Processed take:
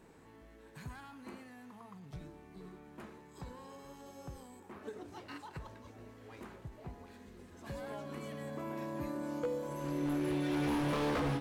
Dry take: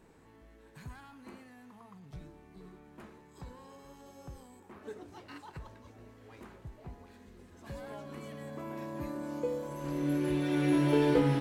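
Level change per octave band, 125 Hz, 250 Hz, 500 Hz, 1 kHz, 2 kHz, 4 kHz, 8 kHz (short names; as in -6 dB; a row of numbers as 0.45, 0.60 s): -5.0, -5.0, -5.0, -0.5, -2.0, -1.5, -0.5 dB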